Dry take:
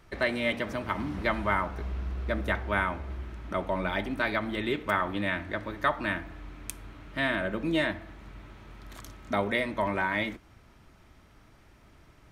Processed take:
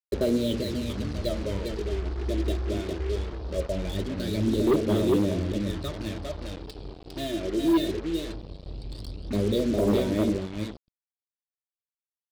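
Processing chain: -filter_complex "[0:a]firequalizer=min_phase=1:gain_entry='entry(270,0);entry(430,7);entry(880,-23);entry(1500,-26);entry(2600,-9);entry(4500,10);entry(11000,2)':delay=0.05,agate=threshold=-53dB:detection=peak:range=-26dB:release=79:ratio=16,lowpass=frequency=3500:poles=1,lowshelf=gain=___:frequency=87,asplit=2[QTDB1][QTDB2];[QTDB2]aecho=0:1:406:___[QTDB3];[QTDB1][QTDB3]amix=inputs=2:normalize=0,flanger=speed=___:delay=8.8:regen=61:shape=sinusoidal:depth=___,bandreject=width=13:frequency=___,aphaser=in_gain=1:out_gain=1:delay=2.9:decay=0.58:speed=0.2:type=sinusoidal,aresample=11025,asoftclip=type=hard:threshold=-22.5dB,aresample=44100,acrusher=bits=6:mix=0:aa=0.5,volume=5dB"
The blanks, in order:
3, 0.596, 1.8, 4.1, 2100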